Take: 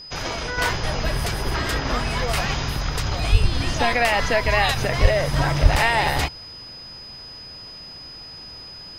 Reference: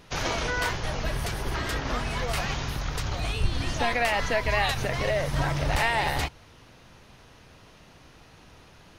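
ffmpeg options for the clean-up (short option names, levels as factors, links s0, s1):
-filter_complex "[0:a]bandreject=f=5000:w=30,asplit=3[s0][s1][s2];[s0]afade=t=out:st=3.31:d=0.02[s3];[s1]highpass=f=140:w=0.5412,highpass=f=140:w=1.3066,afade=t=in:st=3.31:d=0.02,afade=t=out:st=3.43:d=0.02[s4];[s2]afade=t=in:st=3.43:d=0.02[s5];[s3][s4][s5]amix=inputs=3:normalize=0,asplit=3[s6][s7][s8];[s6]afade=t=out:st=5.01:d=0.02[s9];[s7]highpass=f=140:w=0.5412,highpass=f=140:w=1.3066,afade=t=in:st=5.01:d=0.02,afade=t=out:st=5.13:d=0.02[s10];[s8]afade=t=in:st=5.13:d=0.02[s11];[s9][s10][s11]amix=inputs=3:normalize=0,asplit=3[s12][s13][s14];[s12]afade=t=out:st=5.62:d=0.02[s15];[s13]highpass=f=140:w=0.5412,highpass=f=140:w=1.3066,afade=t=in:st=5.62:d=0.02,afade=t=out:st=5.74:d=0.02[s16];[s14]afade=t=in:st=5.74:d=0.02[s17];[s15][s16][s17]amix=inputs=3:normalize=0,asetnsamples=n=441:p=0,asendcmd='0.58 volume volume -5.5dB',volume=1"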